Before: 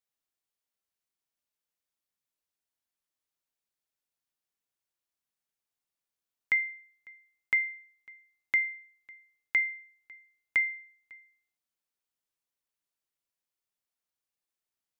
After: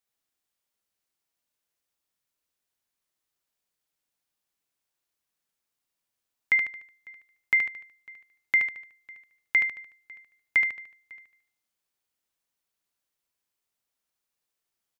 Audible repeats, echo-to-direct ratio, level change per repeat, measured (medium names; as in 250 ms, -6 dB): 4, -4.0 dB, -7.5 dB